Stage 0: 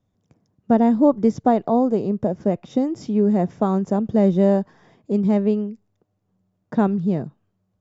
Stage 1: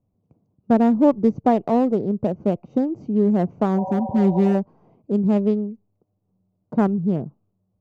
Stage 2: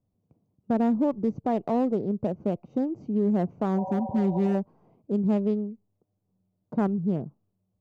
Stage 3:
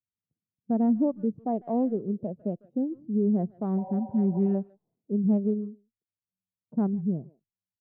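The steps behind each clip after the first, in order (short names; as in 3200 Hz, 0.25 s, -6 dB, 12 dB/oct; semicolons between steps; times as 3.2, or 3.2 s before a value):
Wiener smoothing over 25 samples; spectral repair 3.79–4.52, 410–1100 Hz before
limiter -12 dBFS, peak gain reduction 6 dB; gain -5 dB
speakerphone echo 0.15 s, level -13 dB; spectral expander 1.5:1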